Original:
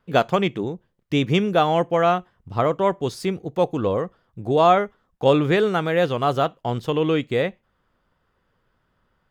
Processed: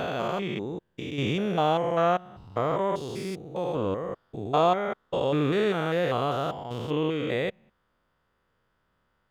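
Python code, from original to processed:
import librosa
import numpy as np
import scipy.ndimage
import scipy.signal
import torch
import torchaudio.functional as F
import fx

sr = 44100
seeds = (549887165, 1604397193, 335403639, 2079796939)

y = fx.spec_steps(x, sr, hold_ms=200)
y = fx.low_shelf(y, sr, hz=370.0, db=-3.5)
y = y * 10.0 ** (-1.5 / 20.0)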